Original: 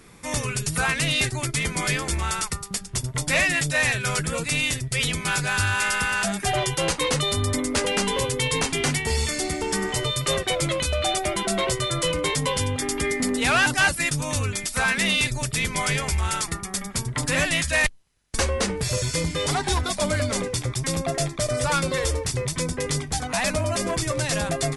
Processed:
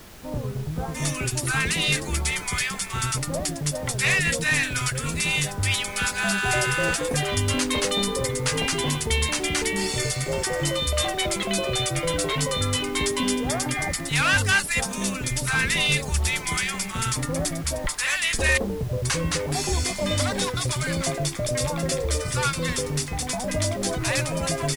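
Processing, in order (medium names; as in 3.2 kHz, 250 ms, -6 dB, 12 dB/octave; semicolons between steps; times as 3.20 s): bands offset in time lows, highs 710 ms, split 850 Hz; added noise pink -45 dBFS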